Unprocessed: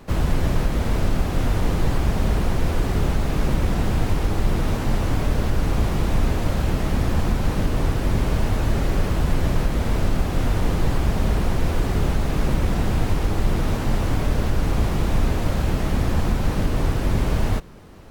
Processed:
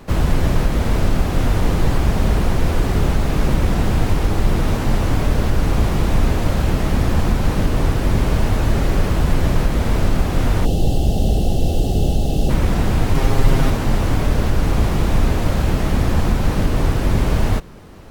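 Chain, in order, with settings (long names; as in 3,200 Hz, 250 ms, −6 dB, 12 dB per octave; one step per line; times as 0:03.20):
0:10.65–0:12.50: gain on a spectral selection 850–2,600 Hz −21 dB
0:13.14–0:13.70: comb filter 7.5 ms, depth 90%
level +4 dB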